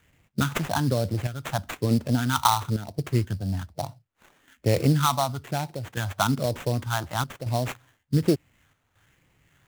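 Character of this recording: phasing stages 4, 1.1 Hz, lowest notch 430–1300 Hz; chopped level 0.67 Hz, depth 60%, duty 85%; aliases and images of a low sample rate 4900 Hz, jitter 20%

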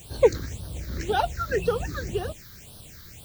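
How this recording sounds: a quantiser's noise floor 8-bit, dither triangular; phasing stages 6, 1.9 Hz, lowest notch 690–2100 Hz

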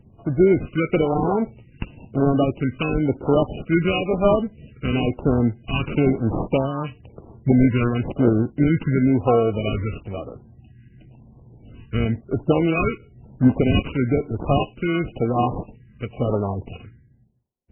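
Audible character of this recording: aliases and images of a low sample rate 1800 Hz, jitter 0%; phasing stages 2, 0.99 Hz, lowest notch 730–2100 Hz; MP3

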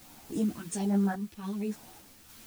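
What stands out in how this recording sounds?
phasing stages 2, 1.2 Hz, lowest notch 670–4800 Hz; a quantiser's noise floor 8-bit, dither triangular; random-step tremolo; a shimmering, thickened sound

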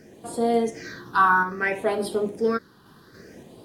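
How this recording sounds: phasing stages 6, 0.61 Hz, lowest notch 560–1700 Hz; a quantiser's noise floor 12-bit, dither triangular; random-step tremolo; AAC

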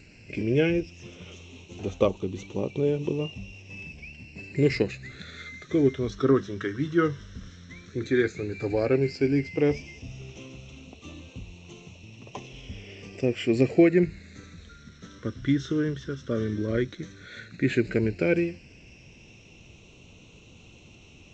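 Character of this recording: phasing stages 12, 0.11 Hz, lowest notch 790–1600 Hz; G.722

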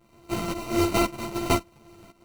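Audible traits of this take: a buzz of ramps at a fixed pitch in blocks of 128 samples; tremolo saw up 1.9 Hz, depth 85%; aliases and images of a low sample rate 1700 Hz, jitter 0%; a shimmering, thickened sound

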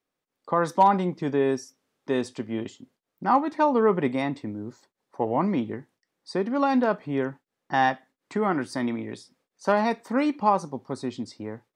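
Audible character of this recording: noise floor -85 dBFS; spectral tilt -5.0 dB/oct

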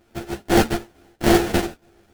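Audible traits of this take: a buzz of ramps at a fixed pitch in blocks of 128 samples; random-step tremolo 4.4 Hz, depth 65%; aliases and images of a low sample rate 1100 Hz, jitter 20%; a shimmering, thickened sound

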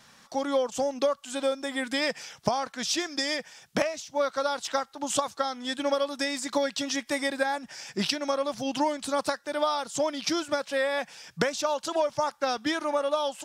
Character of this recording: noise floor -58 dBFS; spectral tilt -2.5 dB/oct

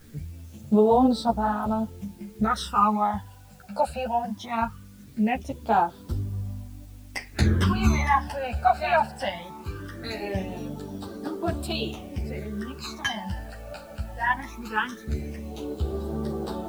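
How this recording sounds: phasing stages 12, 0.2 Hz, lowest notch 340–2300 Hz; a quantiser's noise floor 10-bit, dither triangular; a shimmering, thickened sound

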